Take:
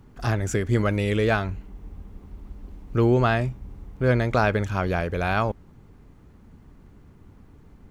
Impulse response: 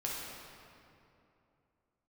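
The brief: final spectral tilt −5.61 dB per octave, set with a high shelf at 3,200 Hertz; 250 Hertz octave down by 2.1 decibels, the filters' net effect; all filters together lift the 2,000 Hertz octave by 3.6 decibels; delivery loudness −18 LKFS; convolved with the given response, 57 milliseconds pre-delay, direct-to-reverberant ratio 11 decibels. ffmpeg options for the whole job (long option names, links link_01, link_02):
-filter_complex "[0:a]equalizer=frequency=250:width_type=o:gain=-3,equalizer=frequency=2000:width_type=o:gain=6,highshelf=frequency=3200:gain=-3,asplit=2[link_01][link_02];[1:a]atrim=start_sample=2205,adelay=57[link_03];[link_02][link_03]afir=irnorm=-1:irlink=0,volume=-14.5dB[link_04];[link_01][link_04]amix=inputs=2:normalize=0,volume=5.5dB"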